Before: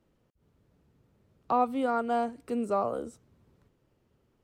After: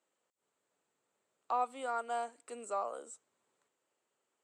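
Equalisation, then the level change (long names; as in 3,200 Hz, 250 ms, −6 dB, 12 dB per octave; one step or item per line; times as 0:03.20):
high-pass filter 660 Hz 12 dB per octave
low-pass with resonance 7,800 Hz, resonance Q 5.4
parametric band 5,400 Hz −6 dB 0.43 octaves
−5.0 dB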